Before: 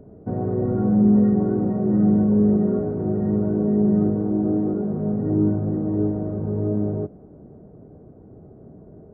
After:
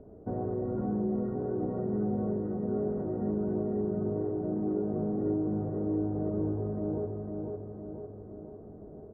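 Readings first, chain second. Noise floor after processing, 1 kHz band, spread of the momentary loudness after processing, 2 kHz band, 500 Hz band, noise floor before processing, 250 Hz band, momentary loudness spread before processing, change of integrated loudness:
−48 dBFS, −6.5 dB, 12 LU, can't be measured, −7.0 dB, −46 dBFS, −12.0 dB, 8 LU, −11.5 dB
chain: Bessel low-pass filter 1,300 Hz, order 2
parametric band 150 Hz −8.5 dB 1.5 octaves
downward compressor, threshold −27 dBFS, peak gain reduction 9 dB
repeating echo 503 ms, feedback 55%, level −4 dB
level −2 dB

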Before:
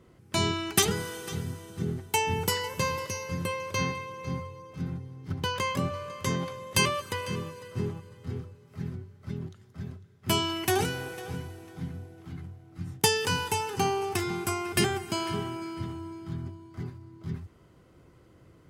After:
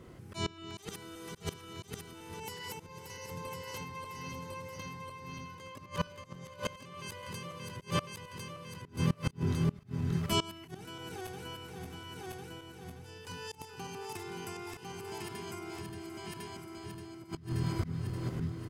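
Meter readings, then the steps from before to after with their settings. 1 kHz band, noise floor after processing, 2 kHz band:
−10.0 dB, −53 dBFS, −11.5 dB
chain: feedback delay that plays each chunk backwards 289 ms, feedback 58%, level −3 dB
volume swells 602 ms
single-tap delay 1,052 ms −3.5 dB
downward compressor, threshold −28 dBFS, peak gain reduction 7 dB
gate with flip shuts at −31 dBFS, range −24 dB
automatic gain control gain up to 8.5 dB
level +5 dB

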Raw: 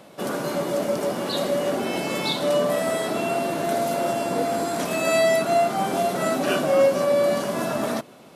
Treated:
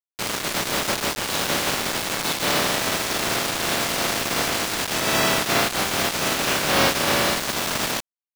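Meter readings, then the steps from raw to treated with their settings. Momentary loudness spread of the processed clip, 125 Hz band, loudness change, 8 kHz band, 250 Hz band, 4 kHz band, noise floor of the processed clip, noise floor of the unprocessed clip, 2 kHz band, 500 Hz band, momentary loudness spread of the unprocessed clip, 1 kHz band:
5 LU, +1.5 dB, +1.5 dB, +10.0 dB, −2.0 dB, +9.5 dB, below −85 dBFS, −47 dBFS, +7.0 dB, −7.0 dB, 7 LU, +0.5 dB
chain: compressing power law on the bin magnitudes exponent 0.25
Bessel low-pass filter 4,300 Hz, order 2
gate on every frequency bin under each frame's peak −20 dB strong
in parallel at 0 dB: downward compressor, threshold −33 dBFS, peak gain reduction 15.5 dB
on the sum: bit reduction 4 bits

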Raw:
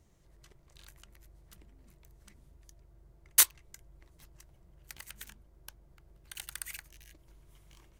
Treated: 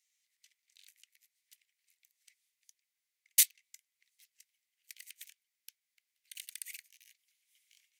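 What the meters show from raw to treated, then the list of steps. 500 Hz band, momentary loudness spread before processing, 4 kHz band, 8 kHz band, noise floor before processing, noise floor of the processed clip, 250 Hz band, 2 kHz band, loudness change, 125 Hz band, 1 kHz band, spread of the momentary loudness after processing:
below −35 dB, 24 LU, −2.5 dB, −2.5 dB, −64 dBFS, below −85 dBFS, can't be measured, −5.5 dB, −2.5 dB, below −40 dB, below −25 dB, 24 LU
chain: Chebyshev high-pass filter 2,100 Hz, order 4
level −2 dB

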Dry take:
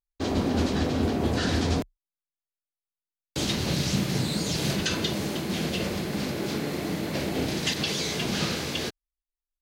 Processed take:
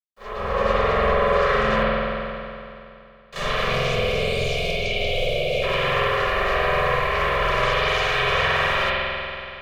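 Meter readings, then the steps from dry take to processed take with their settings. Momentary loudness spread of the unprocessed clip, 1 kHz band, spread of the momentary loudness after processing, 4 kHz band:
5 LU, +14.0 dB, 11 LU, +3.5 dB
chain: Chebyshev band-stop filter 320–690 Hz, order 5
three-way crossover with the lows and the highs turned down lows −18 dB, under 450 Hz, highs −19 dB, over 2,300 Hz
on a send: backwards echo 34 ms −9.5 dB
on the sum: automatic gain control gain up to 15 dB
brickwall limiter −16.5 dBFS, peak gain reduction 8.5 dB
notch comb filter 590 Hz
ring modulation 300 Hz
bit reduction 11 bits
gain on a spectral selection 0:03.70–0:05.63, 740–2,100 Hz −29 dB
spring reverb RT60 2.7 s, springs 46 ms, chirp 70 ms, DRR −9 dB

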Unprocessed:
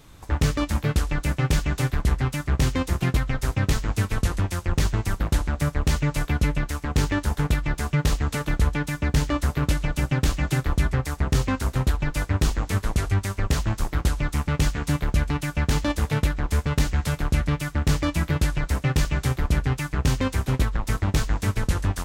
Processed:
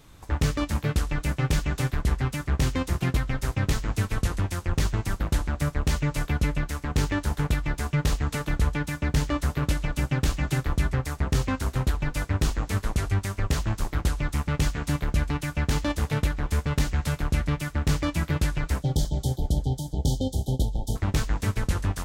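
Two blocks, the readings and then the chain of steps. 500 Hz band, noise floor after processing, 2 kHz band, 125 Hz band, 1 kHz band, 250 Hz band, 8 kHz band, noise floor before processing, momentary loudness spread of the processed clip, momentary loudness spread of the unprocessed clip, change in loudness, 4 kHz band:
−2.5 dB, −45 dBFS, −3.0 dB, −2.5 dB, −3.0 dB, −2.5 dB, −2.5 dB, −42 dBFS, 2 LU, 2 LU, −2.5 dB, −2.5 dB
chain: time-frequency box erased 0:18.82–0:20.96, 890–3,000 Hz
feedback echo with a swinging delay time 285 ms, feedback 45%, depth 52 cents, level −18.5 dB
level −2.5 dB

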